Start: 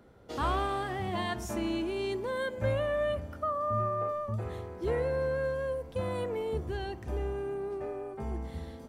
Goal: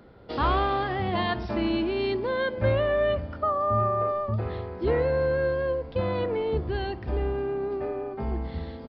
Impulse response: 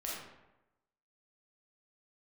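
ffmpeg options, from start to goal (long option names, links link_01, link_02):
-filter_complex "[0:a]asplit=2[link_01][link_02];[link_02]asetrate=29433,aresample=44100,atempo=1.49831,volume=-16dB[link_03];[link_01][link_03]amix=inputs=2:normalize=0,aresample=11025,aresample=44100,volume=6dB"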